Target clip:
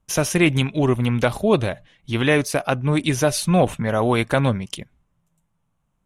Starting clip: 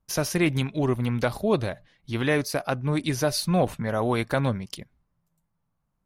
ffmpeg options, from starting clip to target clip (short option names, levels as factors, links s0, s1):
-af "lowpass=7900,aexciter=amount=1.4:drive=2.8:freq=2500,volume=1.88"